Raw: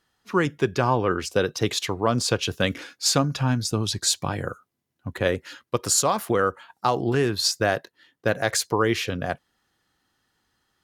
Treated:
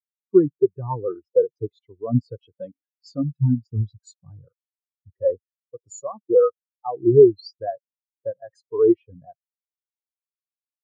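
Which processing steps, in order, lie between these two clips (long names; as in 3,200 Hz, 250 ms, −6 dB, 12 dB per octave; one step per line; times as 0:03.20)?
0:02.37–0:03.70: low-shelf EQ 76 Hz −11.5 dB
in parallel at +3 dB: brickwall limiter −14 dBFS, peak gain reduction 7.5 dB
on the sum: every bin expanded away from the loudest bin 4 to 1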